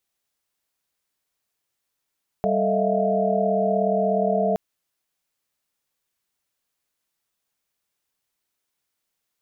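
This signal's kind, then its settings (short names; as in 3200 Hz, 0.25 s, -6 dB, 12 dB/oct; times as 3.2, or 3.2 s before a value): chord G3/A4/D#5/E5/F5 sine, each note -25 dBFS 2.12 s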